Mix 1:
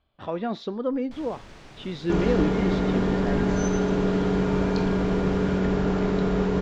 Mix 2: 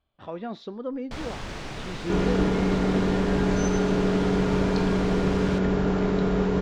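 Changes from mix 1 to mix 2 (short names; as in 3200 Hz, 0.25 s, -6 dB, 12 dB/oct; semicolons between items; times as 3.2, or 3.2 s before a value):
speech -5.5 dB; first sound +11.0 dB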